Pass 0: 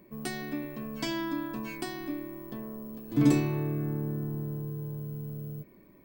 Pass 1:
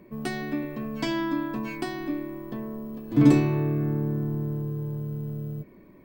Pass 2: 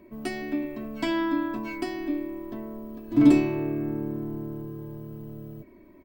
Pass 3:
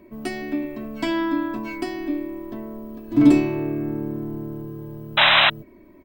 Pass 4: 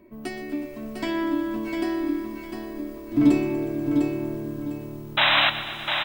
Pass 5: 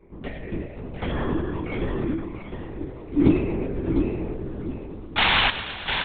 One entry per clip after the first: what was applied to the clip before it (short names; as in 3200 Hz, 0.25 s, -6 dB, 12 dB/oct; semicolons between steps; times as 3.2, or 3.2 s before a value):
high shelf 5000 Hz -11 dB; gain +5.5 dB
comb 3.1 ms, depth 66%; gain -2.5 dB
painted sound noise, 5.17–5.5, 560–4000 Hz -18 dBFS; gain +3 dB
feedback echo 0.702 s, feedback 28%, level -6 dB; lo-fi delay 0.121 s, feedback 80%, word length 7-bit, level -14 dB; gain -4 dB
LPC vocoder at 8 kHz whisper